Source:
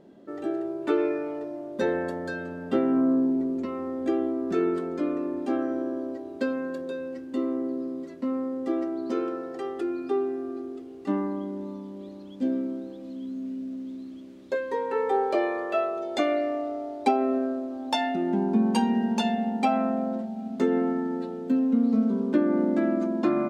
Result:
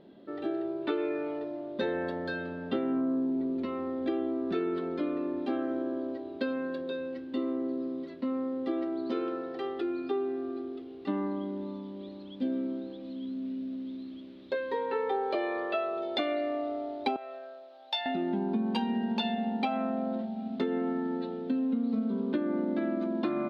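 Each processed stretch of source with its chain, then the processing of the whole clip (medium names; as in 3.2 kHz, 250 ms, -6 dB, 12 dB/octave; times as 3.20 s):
17.16–18.06 s: ladder high-pass 510 Hz, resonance 40% + tilt shelf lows -7 dB, about 1.5 kHz + band-stop 1.1 kHz, Q 6.1
whole clip: resonant high shelf 5.3 kHz -12 dB, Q 3; compression 4:1, threshold -25 dBFS; trim -2 dB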